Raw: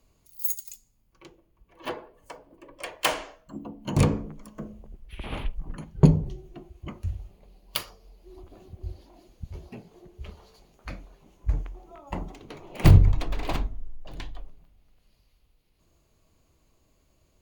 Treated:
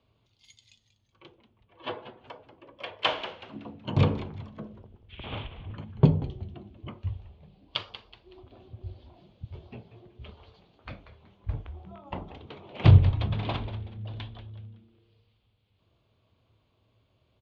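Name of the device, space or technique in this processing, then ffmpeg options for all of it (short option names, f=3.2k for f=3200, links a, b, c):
frequency-shifting delay pedal into a guitar cabinet: -filter_complex "[0:a]asplit=5[a][b][c][d][e];[b]adelay=187,afreqshift=-120,volume=-12dB[f];[c]adelay=374,afreqshift=-240,volume=-21.1dB[g];[d]adelay=561,afreqshift=-360,volume=-30.2dB[h];[e]adelay=748,afreqshift=-480,volume=-39.4dB[i];[a][f][g][h][i]amix=inputs=5:normalize=0,highpass=81,equalizer=f=110:t=q:w=4:g=9,equalizer=f=170:t=q:w=4:g=-5,equalizer=f=310:t=q:w=4:g=-4,equalizer=f=1.9k:t=q:w=4:g=-4,equalizer=f=3.4k:t=q:w=4:g=7,lowpass=f=3.8k:w=0.5412,lowpass=f=3.8k:w=1.3066,volume=-1.5dB"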